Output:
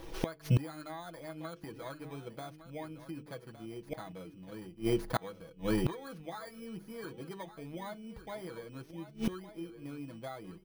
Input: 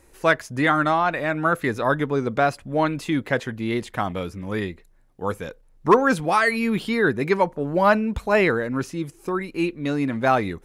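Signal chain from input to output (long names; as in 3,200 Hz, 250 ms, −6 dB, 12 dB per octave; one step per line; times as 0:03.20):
samples in bit-reversed order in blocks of 16 samples
mains-hum notches 50/100/150/200/250/300/350/400/450 Hz
comb filter 6.1 ms, depth 61%
downward compressor 16 to 1, threshold −19 dBFS, peak gain reduction 11.5 dB
low-pass filter 2,400 Hz 6 dB per octave
on a send: single-tap delay 1,161 ms −12.5 dB
on the sum: gate with flip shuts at −27 dBFS, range −28 dB
level +9.5 dB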